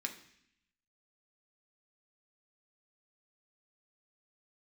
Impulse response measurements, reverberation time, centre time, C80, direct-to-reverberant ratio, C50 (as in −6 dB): 0.70 s, 12 ms, 14.0 dB, 2.5 dB, 11.0 dB